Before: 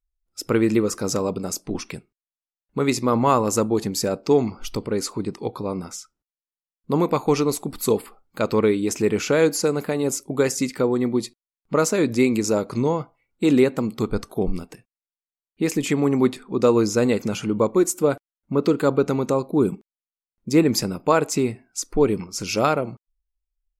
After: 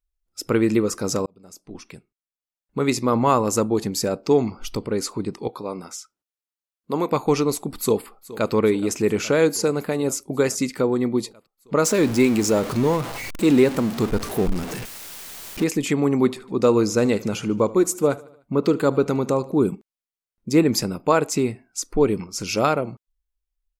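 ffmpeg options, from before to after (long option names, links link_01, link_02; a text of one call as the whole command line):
ffmpeg -i in.wav -filter_complex "[0:a]asettb=1/sr,asplit=3[link_01][link_02][link_03];[link_01]atrim=end=5.484[link_04];[link_02]atrim=start=5.48:end=7.12,asetpts=PTS-STARTPTS,afade=type=in:duration=0.004:curve=qsin,afade=type=out:start_time=1.636:duration=0.004:curve=qsin,highpass=frequency=360:poles=1[link_05];[link_03]atrim=start=7.116[link_06];[link_04][link_05]acrossfade=duration=0.004:curve1=hsin:curve2=qsin[link_07];[link_07][link_06]acrossfade=duration=0.004:curve1=qsin:curve2=hsin,asplit=2[link_08][link_09];[link_09]afade=type=in:start_time=7.79:duration=0.01,afade=type=out:start_time=8.52:duration=0.01,aecho=0:1:420|840|1260|1680|2100|2520|2940|3360|3780|4200|4620|5040:0.133352|0.106682|0.0853454|0.0682763|0.054621|0.0436968|0.0349575|0.027966|0.0223728|0.0178982|0.0143186|0.0114549[link_10];[link_08][link_10]amix=inputs=2:normalize=0,asettb=1/sr,asplit=3[link_11][link_12][link_13];[link_11]atrim=end=11.854[link_14];[link_12]atrim=start=11.85:end=15.64,asetpts=PTS-STARTPTS,afade=type=in:duration=0.004:curve=qsin,afade=type=out:start_time=3.786:duration=0.004:curve=qsin,aeval=exprs='val(0)+0.5*0.0501*sgn(val(0))':channel_layout=same[link_15];[link_13]atrim=start=15.636[link_16];[link_14][link_15]acrossfade=duration=0.004:curve1=hsin:curve2=qsin[link_17];[link_17][link_16]acrossfade=duration=0.004:curve1=qsin:curve2=hsin,asplit=3[link_18][link_19][link_20];[link_18]afade=type=out:start_time=16.22:duration=0.02[link_21];[link_19]aecho=1:1:75|150|225|300:0.0891|0.049|0.027|0.0148,afade=type=in:start_time=16.22:duration=0.02,afade=type=out:start_time=19.55:duration=0.02[link_22];[link_20]afade=type=in:start_time=19.55:duration=0.02[link_23];[link_21][link_22][link_23]amix=inputs=3:normalize=0,asplit=2[link_24][link_25];[link_24]atrim=end=1.26,asetpts=PTS-STARTPTS,afade=type=out:start_time=1.256:duration=0.004:curve=hsin[link_26];[link_25]atrim=start=1.26,asetpts=PTS-STARTPTS,afade=type=in:duration=1.61[link_27];[link_26][link_27]concat=n=2:v=0:a=1" out.wav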